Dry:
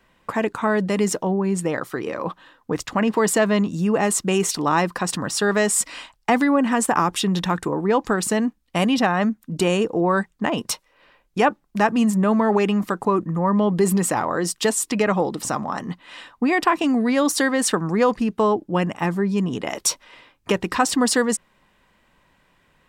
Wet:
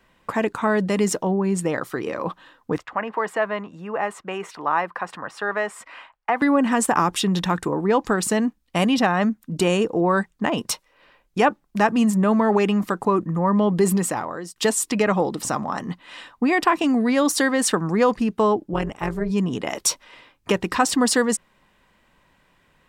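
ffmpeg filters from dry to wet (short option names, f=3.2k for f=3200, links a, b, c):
-filter_complex "[0:a]asettb=1/sr,asplit=3[a][b][c];[a]atrim=end=2.784[d];[b]atrim=start=2.78:end=6.42,asetpts=PTS-STARTPTS,afade=t=in:d=0.004:c=qsin,afade=t=out:st=3.636:d=0.004:c=qsin,acrossover=split=540 2400:gain=0.158 1 0.0708[e][f][g];[e][f][g]amix=inputs=3:normalize=0[h];[c]atrim=start=6.416[i];[d][h]acrossfade=d=0.004:c1=hsin:c2=qsin[j];[j][i]acrossfade=d=0.004:c1=qsin:c2=hsin,asplit=3[k][l][m];[k]afade=t=out:st=18.72:d=0.02[n];[l]tremolo=f=220:d=0.824,afade=t=in:st=18.72:d=0.02,afade=t=out:st=19.29:d=0.02[o];[m]afade=t=in:st=19.29:d=0.02[p];[n][o][p]amix=inputs=3:normalize=0,asplit=2[q][r];[q]atrim=end=14.56,asetpts=PTS-STARTPTS,afade=t=out:st=13.88:d=0.68:silence=0.125893[s];[r]atrim=start=14.56,asetpts=PTS-STARTPTS,afade=t=in:d=0.004:c=hsin:silence=0.125893[t];[s][t]concat=n=2:v=0:a=1"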